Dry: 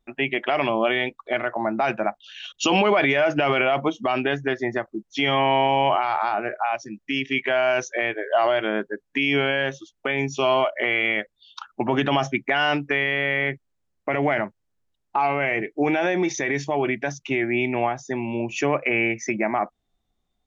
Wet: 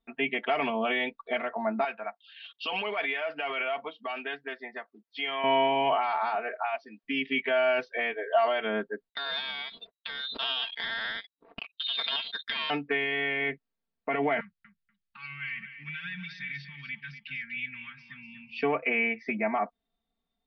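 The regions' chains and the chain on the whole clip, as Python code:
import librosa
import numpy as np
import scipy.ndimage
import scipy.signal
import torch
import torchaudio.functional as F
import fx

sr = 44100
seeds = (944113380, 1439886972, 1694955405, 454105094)

y = fx.chain(x, sr, fx.highpass(hz=1400.0, slope=6),
    fx.high_shelf(hz=2700.0, db=-5.5), at=(1.84, 5.44))
y = fx.chain(y, sr, fx.highpass(hz=400.0, slope=12),
    fx.band_squash(depth_pct=40), at=(6.35, 7.04))
y = fx.chain(y, sr, fx.freq_invert(carrier_hz=3900),
    fx.power_curve(exponent=2.0),
    fx.pre_swell(db_per_s=23.0), at=(9.09, 12.7))
y = fx.chain(y, sr, fx.ellip_bandstop(low_hz=160.0, high_hz=1600.0, order=3, stop_db=50),
    fx.peak_eq(hz=1800.0, db=-6.0, octaves=0.85),
    fx.echo_feedback(ms=243, feedback_pct=17, wet_db=-11.0), at=(14.4, 18.63))
y = scipy.signal.sosfilt(scipy.signal.butter(16, 4900.0, 'lowpass', fs=sr, output='sos'), y)
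y = fx.low_shelf(y, sr, hz=87.0, db=-10.0)
y = y + 0.92 * np.pad(y, (int(4.4 * sr / 1000.0), 0))[:len(y)]
y = F.gain(torch.from_numpy(y), -7.5).numpy()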